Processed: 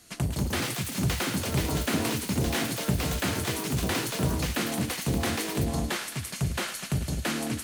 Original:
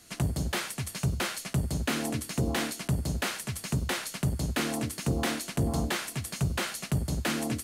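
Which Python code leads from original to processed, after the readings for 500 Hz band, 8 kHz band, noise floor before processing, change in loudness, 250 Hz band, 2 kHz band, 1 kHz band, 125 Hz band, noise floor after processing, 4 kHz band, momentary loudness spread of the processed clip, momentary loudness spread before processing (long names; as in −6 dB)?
+3.0 dB, +2.5 dB, −46 dBFS, +2.0 dB, +2.5 dB, +2.0 dB, +2.5 dB, +1.0 dB, −39 dBFS, +3.0 dB, 3 LU, 3 LU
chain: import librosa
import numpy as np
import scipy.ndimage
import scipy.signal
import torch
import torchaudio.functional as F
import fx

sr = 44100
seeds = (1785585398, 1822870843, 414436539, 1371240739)

y = fx.echo_thinned(x, sr, ms=108, feedback_pct=83, hz=1000.0, wet_db=-10.0)
y = fx.echo_pitch(y, sr, ms=248, semitones=6, count=2, db_per_echo=-3.0)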